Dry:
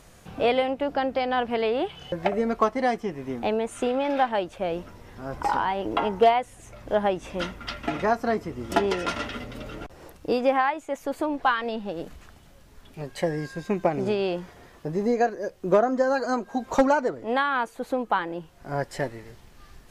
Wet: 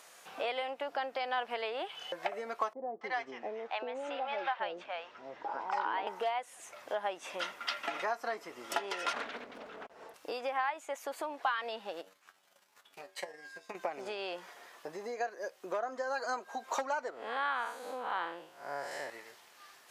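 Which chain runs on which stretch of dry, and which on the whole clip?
2.73–6.07 air absorption 170 m + bands offset in time lows, highs 0.28 s, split 670 Hz
9.13–10.14 tilt -3.5 dB/oct + comb 4.5 ms, depth 58% + Doppler distortion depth 0.72 ms
12.01–13.75 resonator 95 Hz, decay 0.27 s, mix 90% + compressor 2:1, threshold -42 dBFS + transient shaper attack +12 dB, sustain -8 dB
17.1–19.1 time blur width 0.17 s + bell 89 Hz +5.5 dB 1.3 oct
whole clip: compressor 4:1, threshold -28 dBFS; HPF 730 Hz 12 dB/oct

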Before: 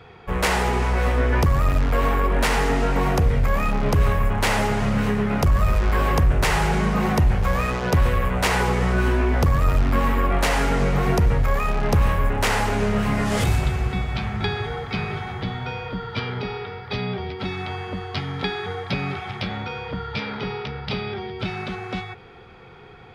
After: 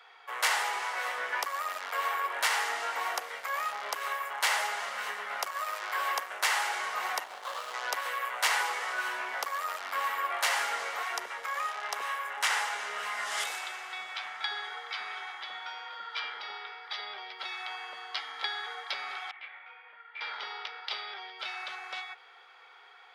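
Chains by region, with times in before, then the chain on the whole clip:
7.24–7.74 median filter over 25 samples + HPF 52 Hz + Doppler distortion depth 0.45 ms
11.03–17 Bessel low-pass 11000 Hz + notch 4400 Hz, Q 20 + bands offset in time highs, lows 70 ms, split 590 Hz
19.31–20.21 ladder low-pass 2600 Hz, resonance 55% + detuned doubles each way 25 cents
whole clip: Bessel high-pass 1100 Hz, order 4; notch 2500 Hz, Q 14; gain -2.5 dB

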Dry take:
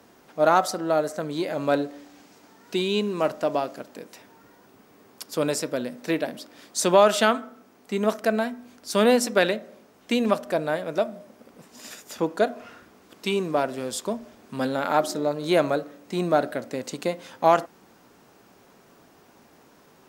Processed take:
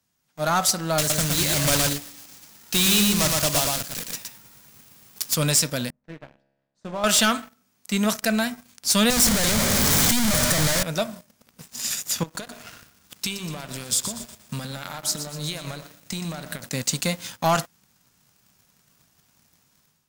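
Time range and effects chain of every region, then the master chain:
0.98–5.36 block floating point 3-bit + echo 0.117 s -3.5 dB
5.9–7.04 G.711 law mismatch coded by A + LPF 1100 Hz + resonator 68 Hz, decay 1.3 s, mix 80%
9.1–10.83 infinite clipping + notch 2600 Hz, Q 6.2
12.23–16.66 compressor 10:1, threshold -32 dBFS + feedback echo 0.12 s, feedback 50%, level -10 dB
whole clip: EQ curve 150 Hz 0 dB, 360 Hz -19 dB, 6800 Hz +4 dB; AGC gain up to 10.5 dB; sample leveller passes 3; gain -8.5 dB

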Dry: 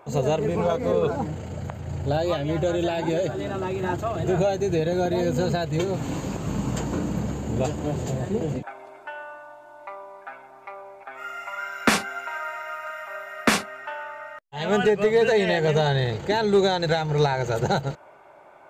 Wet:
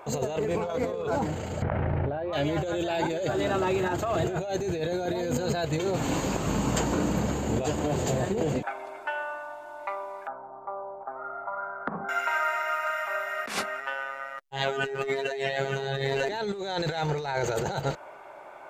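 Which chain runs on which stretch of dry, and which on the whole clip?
1.62–2.33 LPF 2200 Hz 24 dB/oct + fast leveller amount 100%
10.27–12.09 steep low-pass 1200 Hz + bell 160 Hz +12.5 dB 0.46 oct + compressor 16:1, threshold -30 dBFS
13.8–16.29 echo 0.928 s -5 dB + robotiser 136 Hz
whole clip: bell 120 Hz -7.5 dB 2.5 oct; negative-ratio compressor -30 dBFS, ratio -1; gain +2 dB

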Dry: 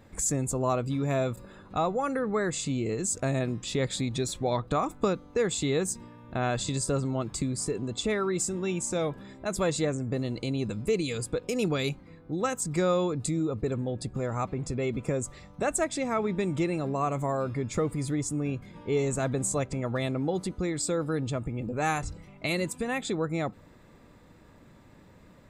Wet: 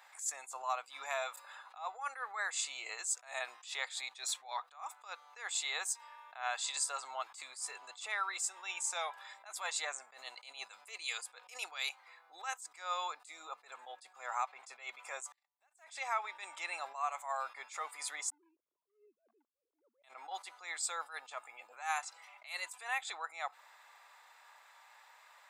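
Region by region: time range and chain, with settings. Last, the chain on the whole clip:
15.32–15.83 gate -44 dBFS, range -40 dB + bell 1300 Hz -6 dB 0.21 oct + short-mantissa float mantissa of 4-bit
18.3–20.04 sine-wave speech + inverse Chebyshev low-pass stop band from 720 Hz + compressor 3:1, threshold -32 dBFS
whole clip: Chebyshev high-pass 790 Hz, order 4; compressor 2:1, threshold -38 dBFS; attack slew limiter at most 160 dB/s; gain +3.5 dB

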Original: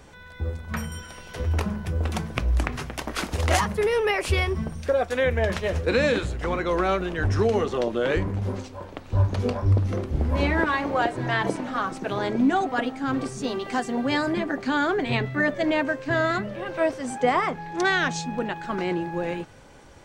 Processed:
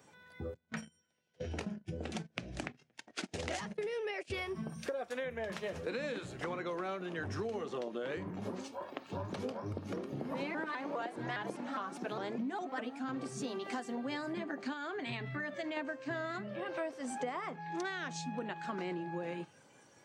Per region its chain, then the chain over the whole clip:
0.54–4.34 LPF 8600 Hz 24 dB/oct + bell 1100 Hz -9.5 dB 0.63 oct + gate -30 dBFS, range -24 dB
8.3–13.09 HPF 130 Hz + shaped vibrato saw up 4.9 Hz, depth 160 cents
14.73–15.77 bell 370 Hz -5.5 dB 2.3 oct + compressor 2.5:1, threshold -28 dBFS
whole clip: spectral noise reduction 10 dB; HPF 120 Hz 24 dB/oct; compressor 6:1, threshold -34 dBFS; gain -2.5 dB

